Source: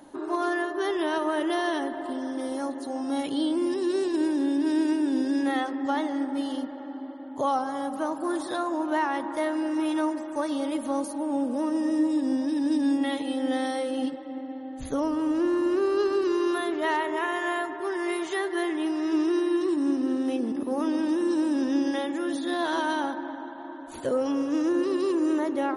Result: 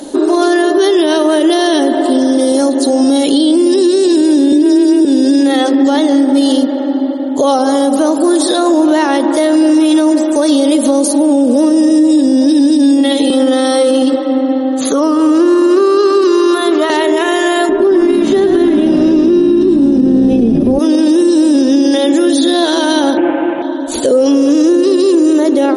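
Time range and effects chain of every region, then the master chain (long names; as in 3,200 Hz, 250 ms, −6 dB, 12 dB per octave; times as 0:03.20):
0:04.52–0:05.05: comb filter 3.1 ms, depth 86% + frequency shifter +16 Hz
0:13.30–0:16.90: Butterworth high-pass 170 Hz + parametric band 1,200 Hz +14 dB 0.56 octaves + downward compressor, threshold −28 dBFS
0:17.69–0:20.79: RIAA equalisation playback + comb filter 5 ms, depth 45% + echo with shifted repeats 107 ms, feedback 57%, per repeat −61 Hz, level −7 dB
0:23.17–0:23.62: linear delta modulator 16 kbit/s, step −40 dBFS + band-pass filter 100–2,000 Hz + comb filter 5.8 ms, depth 98%
whole clip: octave-band graphic EQ 125/250/500/1,000/2,000/4,000/8,000 Hz −8/+5/+8/−6/−3/+8/+10 dB; downward compressor, threshold −21 dBFS; boost into a limiter +20 dB; level −2 dB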